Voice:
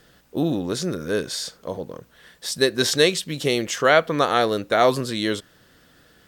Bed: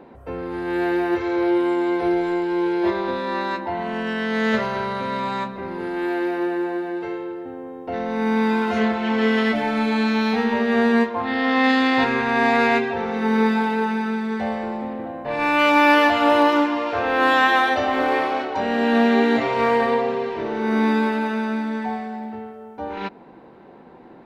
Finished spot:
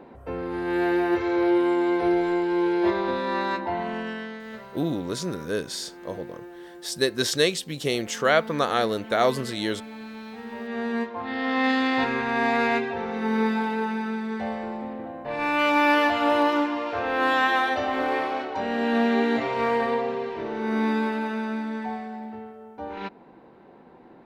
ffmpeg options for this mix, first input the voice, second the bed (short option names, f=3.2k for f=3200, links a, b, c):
-filter_complex "[0:a]adelay=4400,volume=-4dB[a];[1:a]volume=12.5dB,afade=t=out:st=3.74:d=0.67:silence=0.133352,afade=t=in:st=10.37:d=1.28:silence=0.199526[b];[a][b]amix=inputs=2:normalize=0"